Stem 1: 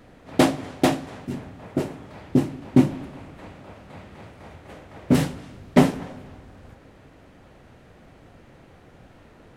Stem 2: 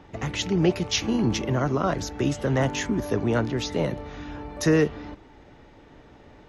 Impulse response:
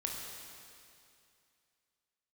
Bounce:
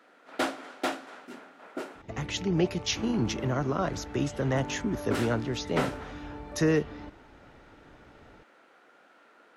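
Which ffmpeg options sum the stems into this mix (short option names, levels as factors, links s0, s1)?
-filter_complex "[0:a]highpass=f=230:w=0.5412,highpass=f=230:w=1.3066,equalizer=f=1400:t=o:w=0.27:g=10,asplit=2[s0][s1];[s1]highpass=f=720:p=1,volume=5.62,asoftclip=type=tanh:threshold=0.75[s2];[s0][s2]amix=inputs=2:normalize=0,lowpass=f=6100:p=1,volume=0.501,volume=0.188,asplit=3[s3][s4][s5];[s3]atrim=end=2.02,asetpts=PTS-STARTPTS,afade=t=out:st=2.016:d=0.004:c=hsin[s6];[s4]atrim=start=2.02:end=2.95,asetpts=PTS-STARTPTS,volume=0[s7];[s5]atrim=start=2.95,asetpts=PTS-STARTPTS,afade=t=in:d=0.004:c=hsin[s8];[s6][s7][s8]concat=n=3:v=0:a=1[s9];[1:a]adelay=1950,volume=0.596[s10];[s9][s10]amix=inputs=2:normalize=0"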